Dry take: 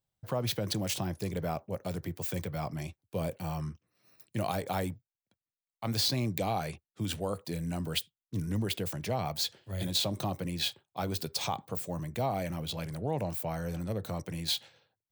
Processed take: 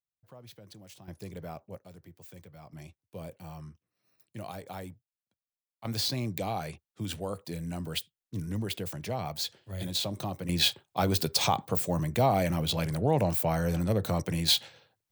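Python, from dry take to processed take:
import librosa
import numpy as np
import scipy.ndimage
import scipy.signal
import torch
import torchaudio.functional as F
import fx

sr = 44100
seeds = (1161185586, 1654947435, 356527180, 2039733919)

y = fx.gain(x, sr, db=fx.steps((0.0, -18.5), (1.08, -7.5), (1.79, -15.0), (2.73, -8.5), (5.85, -1.5), (10.49, 7.0)))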